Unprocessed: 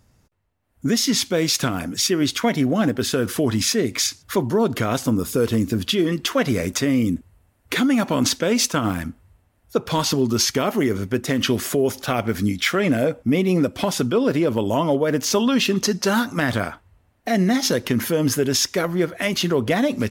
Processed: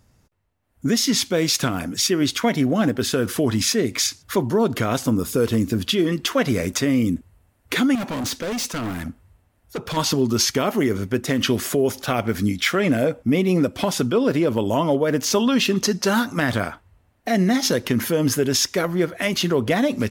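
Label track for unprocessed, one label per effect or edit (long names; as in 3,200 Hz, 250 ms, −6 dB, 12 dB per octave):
7.950000	9.970000	hard clipping −24 dBFS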